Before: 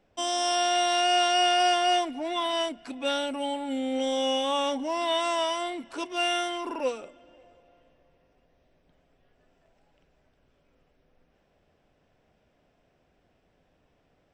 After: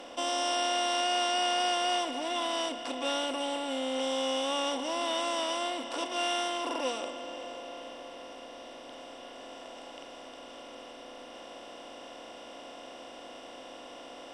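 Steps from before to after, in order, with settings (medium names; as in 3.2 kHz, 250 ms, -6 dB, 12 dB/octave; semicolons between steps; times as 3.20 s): spectral levelling over time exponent 0.4; trim -8 dB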